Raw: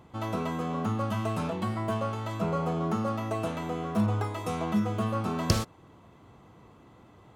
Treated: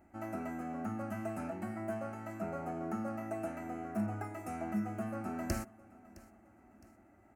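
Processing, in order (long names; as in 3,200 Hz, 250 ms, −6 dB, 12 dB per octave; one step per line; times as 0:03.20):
parametric band 4,600 Hz −6 dB 1 octave
phaser with its sweep stopped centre 700 Hz, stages 8
repeating echo 663 ms, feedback 46%, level −21 dB
level −5 dB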